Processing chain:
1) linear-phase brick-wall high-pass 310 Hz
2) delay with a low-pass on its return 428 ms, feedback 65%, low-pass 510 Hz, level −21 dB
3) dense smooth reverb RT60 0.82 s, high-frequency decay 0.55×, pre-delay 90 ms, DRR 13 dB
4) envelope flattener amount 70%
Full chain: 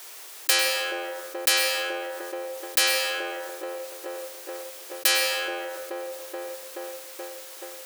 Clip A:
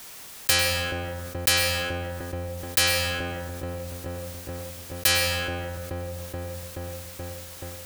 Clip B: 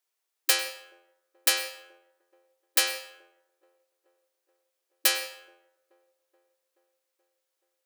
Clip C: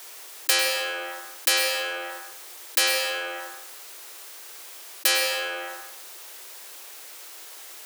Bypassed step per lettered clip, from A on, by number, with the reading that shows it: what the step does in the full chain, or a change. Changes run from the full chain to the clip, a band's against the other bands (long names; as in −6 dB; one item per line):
1, 250 Hz band +5.0 dB
4, change in crest factor +5.0 dB
2, change in momentary loudness spread +2 LU